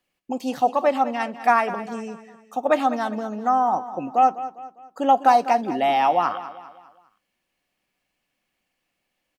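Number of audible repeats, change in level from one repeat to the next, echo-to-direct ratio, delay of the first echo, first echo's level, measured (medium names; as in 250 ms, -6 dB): 3, -7.5 dB, -13.0 dB, 201 ms, -14.0 dB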